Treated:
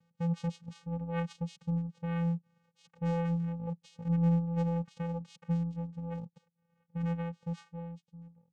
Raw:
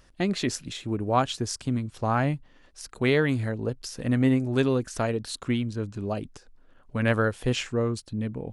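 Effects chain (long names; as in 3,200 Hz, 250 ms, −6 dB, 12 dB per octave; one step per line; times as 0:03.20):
fade-out on the ending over 1.84 s
channel vocoder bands 4, square 169 Hz
level −6 dB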